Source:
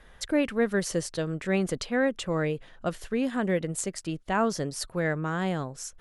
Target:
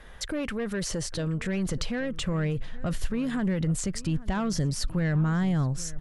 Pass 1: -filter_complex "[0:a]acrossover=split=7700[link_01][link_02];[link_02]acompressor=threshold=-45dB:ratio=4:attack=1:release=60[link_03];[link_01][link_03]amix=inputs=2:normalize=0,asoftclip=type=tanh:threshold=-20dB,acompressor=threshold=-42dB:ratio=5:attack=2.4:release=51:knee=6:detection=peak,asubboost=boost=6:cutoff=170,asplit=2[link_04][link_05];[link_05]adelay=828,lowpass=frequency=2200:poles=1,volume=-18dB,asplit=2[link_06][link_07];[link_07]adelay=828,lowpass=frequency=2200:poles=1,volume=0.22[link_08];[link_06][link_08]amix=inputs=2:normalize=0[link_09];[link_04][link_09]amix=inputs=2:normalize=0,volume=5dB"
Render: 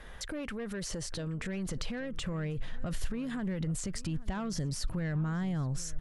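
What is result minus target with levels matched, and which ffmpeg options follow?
downward compressor: peak gain reduction +7.5 dB
-filter_complex "[0:a]acrossover=split=7700[link_01][link_02];[link_02]acompressor=threshold=-45dB:ratio=4:attack=1:release=60[link_03];[link_01][link_03]amix=inputs=2:normalize=0,asoftclip=type=tanh:threshold=-20dB,acompressor=threshold=-32.5dB:ratio=5:attack=2.4:release=51:knee=6:detection=peak,asubboost=boost=6:cutoff=170,asplit=2[link_04][link_05];[link_05]adelay=828,lowpass=frequency=2200:poles=1,volume=-18dB,asplit=2[link_06][link_07];[link_07]adelay=828,lowpass=frequency=2200:poles=1,volume=0.22[link_08];[link_06][link_08]amix=inputs=2:normalize=0[link_09];[link_04][link_09]amix=inputs=2:normalize=0,volume=5dB"

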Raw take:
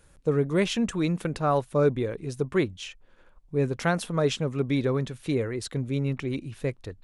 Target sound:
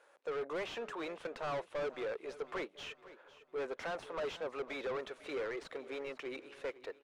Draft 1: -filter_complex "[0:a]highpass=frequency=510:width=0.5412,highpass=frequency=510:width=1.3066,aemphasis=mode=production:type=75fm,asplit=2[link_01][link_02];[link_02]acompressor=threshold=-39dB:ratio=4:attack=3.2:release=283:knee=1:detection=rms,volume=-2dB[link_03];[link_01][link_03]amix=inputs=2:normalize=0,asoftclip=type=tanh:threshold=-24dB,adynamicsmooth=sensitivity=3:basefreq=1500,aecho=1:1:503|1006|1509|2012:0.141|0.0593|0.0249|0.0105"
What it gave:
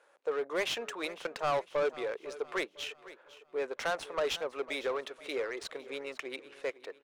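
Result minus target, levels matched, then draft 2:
downward compressor: peak gain reduction +7 dB; soft clipping: distortion −7 dB
-filter_complex "[0:a]highpass=frequency=510:width=0.5412,highpass=frequency=510:width=1.3066,aemphasis=mode=production:type=75fm,asplit=2[link_01][link_02];[link_02]acompressor=threshold=-29.5dB:ratio=4:attack=3.2:release=283:knee=1:detection=rms,volume=-2dB[link_03];[link_01][link_03]amix=inputs=2:normalize=0,asoftclip=type=tanh:threshold=-34dB,adynamicsmooth=sensitivity=3:basefreq=1500,aecho=1:1:503|1006|1509|2012:0.141|0.0593|0.0249|0.0105"

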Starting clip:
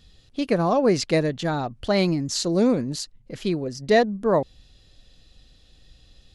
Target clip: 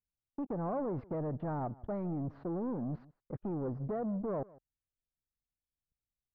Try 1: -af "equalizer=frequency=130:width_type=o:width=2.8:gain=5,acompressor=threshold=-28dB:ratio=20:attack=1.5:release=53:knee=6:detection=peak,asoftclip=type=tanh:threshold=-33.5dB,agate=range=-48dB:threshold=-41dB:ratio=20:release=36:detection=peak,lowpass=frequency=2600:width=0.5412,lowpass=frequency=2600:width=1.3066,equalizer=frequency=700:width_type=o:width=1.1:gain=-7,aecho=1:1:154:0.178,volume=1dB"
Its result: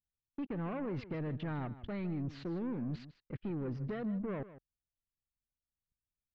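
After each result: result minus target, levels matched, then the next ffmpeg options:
2,000 Hz band +9.5 dB; echo-to-direct +7 dB; 500 Hz band −3.0 dB
-af "equalizer=frequency=130:width_type=o:width=2.8:gain=5,acompressor=threshold=-28dB:ratio=20:attack=1.5:release=53:knee=6:detection=peak,asoftclip=type=tanh:threshold=-33.5dB,agate=range=-48dB:threshold=-41dB:ratio=20:release=36:detection=peak,lowpass=frequency=1300:width=0.5412,lowpass=frequency=1300:width=1.3066,equalizer=frequency=700:width_type=o:width=1.1:gain=-7,aecho=1:1:154:0.178,volume=1dB"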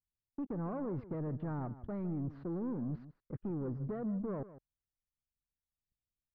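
echo-to-direct +7 dB; 500 Hz band −3.0 dB
-af "equalizer=frequency=130:width_type=o:width=2.8:gain=5,acompressor=threshold=-28dB:ratio=20:attack=1.5:release=53:knee=6:detection=peak,asoftclip=type=tanh:threshold=-33.5dB,agate=range=-48dB:threshold=-41dB:ratio=20:release=36:detection=peak,lowpass=frequency=1300:width=0.5412,lowpass=frequency=1300:width=1.3066,equalizer=frequency=700:width_type=o:width=1.1:gain=-7,aecho=1:1:154:0.0794,volume=1dB"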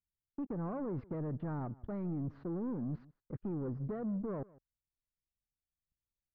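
500 Hz band −3.0 dB
-af "equalizer=frequency=130:width_type=o:width=2.8:gain=5,acompressor=threshold=-28dB:ratio=20:attack=1.5:release=53:knee=6:detection=peak,asoftclip=type=tanh:threshold=-33.5dB,agate=range=-48dB:threshold=-41dB:ratio=20:release=36:detection=peak,lowpass=frequency=1300:width=0.5412,lowpass=frequency=1300:width=1.3066,equalizer=frequency=700:width_type=o:width=1.1:gain=2,aecho=1:1:154:0.0794,volume=1dB"

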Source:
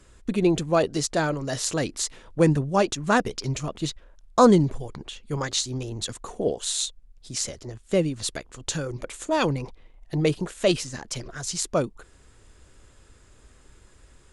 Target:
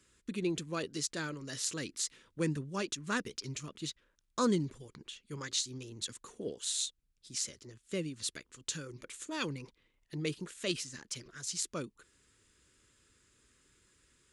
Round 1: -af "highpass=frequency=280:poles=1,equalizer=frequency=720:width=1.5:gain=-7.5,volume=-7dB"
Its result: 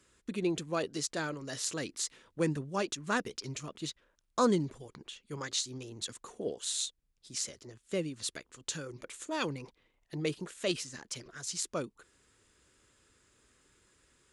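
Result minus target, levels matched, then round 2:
1,000 Hz band +3.0 dB
-af "highpass=frequency=280:poles=1,equalizer=frequency=720:width=1.5:gain=-17.5,volume=-7dB"

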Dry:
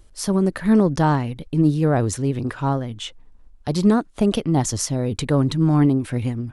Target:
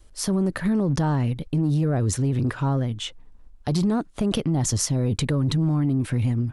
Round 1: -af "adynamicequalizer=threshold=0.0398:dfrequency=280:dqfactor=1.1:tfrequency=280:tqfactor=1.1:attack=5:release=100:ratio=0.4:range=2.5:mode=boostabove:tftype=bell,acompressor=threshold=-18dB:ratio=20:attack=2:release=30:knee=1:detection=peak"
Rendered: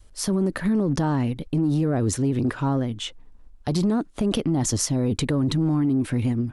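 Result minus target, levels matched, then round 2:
125 Hz band −2.5 dB
-af "adynamicequalizer=threshold=0.0398:dfrequency=130:dqfactor=1.1:tfrequency=130:tqfactor=1.1:attack=5:release=100:ratio=0.4:range=2.5:mode=boostabove:tftype=bell,acompressor=threshold=-18dB:ratio=20:attack=2:release=30:knee=1:detection=peak"

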